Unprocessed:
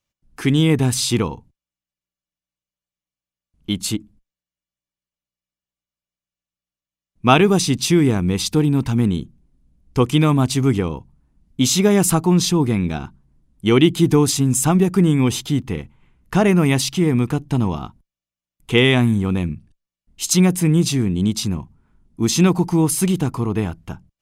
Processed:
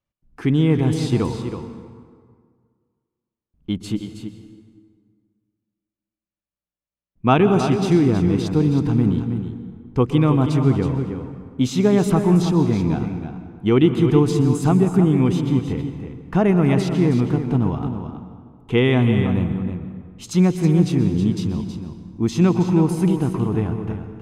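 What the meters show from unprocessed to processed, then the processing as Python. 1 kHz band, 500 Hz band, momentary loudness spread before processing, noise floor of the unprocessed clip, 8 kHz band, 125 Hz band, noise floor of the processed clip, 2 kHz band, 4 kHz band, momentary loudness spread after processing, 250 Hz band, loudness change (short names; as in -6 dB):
-2.0 dB, -0.5 dB, 12 LU, under -85 dBFS, -15.5 dB, +0.5 dB, under -85 dBFS, -6.0 dB, -10.0 dB, 14 LU, 0.0 dB, -1.5 dB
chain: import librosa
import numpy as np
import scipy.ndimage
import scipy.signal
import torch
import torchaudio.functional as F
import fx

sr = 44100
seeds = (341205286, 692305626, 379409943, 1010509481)

y = fx.lowpass(x, sr, hz=1200.0, slope=6)
y = y + 10.0 ** (-9.0 / 20.0) * np.pad(y, (int(320 * sr / 1000.0), 0))[:len(y)]
y = fx.rev_plate(y, sr, seeds[0], rt60_s=1.9, hf_ratio=0.6, predelay_ms=110, drr_db=9.0)
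y = y * 10.0 ** (-1.0 / 20.0)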